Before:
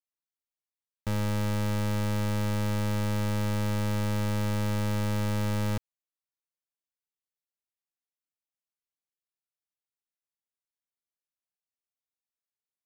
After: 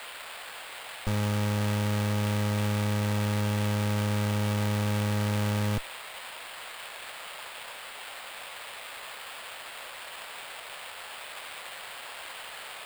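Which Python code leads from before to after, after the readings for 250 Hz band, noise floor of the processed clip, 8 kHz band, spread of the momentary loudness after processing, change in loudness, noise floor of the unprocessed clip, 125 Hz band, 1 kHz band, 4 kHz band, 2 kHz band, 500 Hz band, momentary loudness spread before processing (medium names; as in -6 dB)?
+1.0 dB, -43 dBFS, +4.5 dB, 12 LU, -2.0 dB, under -85 dBFS, +1.0 dB, +3.0 dB, +6.5 dB, +5.5 dB, +1.5 dB, 2 LU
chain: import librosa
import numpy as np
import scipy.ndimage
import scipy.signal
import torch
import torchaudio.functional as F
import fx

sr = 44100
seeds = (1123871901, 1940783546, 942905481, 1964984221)

y = fx.cheby_harmonics(x, sr, harmonics=(8,), levels_db=(-9,), full_scale_db=-27.0)
y = fx.dmg_noise_band(y, sr, seeds[0], low_hz=510.0, high_hz=3500.0, level_db=-43.0)
y = fx.sample_hold(y, sr, seeds[1], rate_hz=6000.0, jitter_pct=0)
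y = y * librosa.db_to_amplitude(1.0)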